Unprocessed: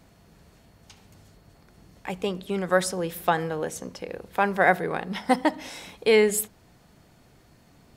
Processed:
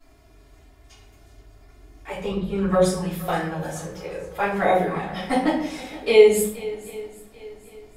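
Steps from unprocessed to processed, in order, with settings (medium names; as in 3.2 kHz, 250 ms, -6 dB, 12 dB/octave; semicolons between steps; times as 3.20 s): 2.24–2.84 s: tilt EQ -2 dB/octave; touch-sensitive flanger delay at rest 3 ms, full sweep at -16 dBFS; shuffle delay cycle 788 ms, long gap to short 1.5:1, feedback 32%, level -18 dB; simulated room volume 99 m³, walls mixed, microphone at 3.1 m; trim -7.5 dB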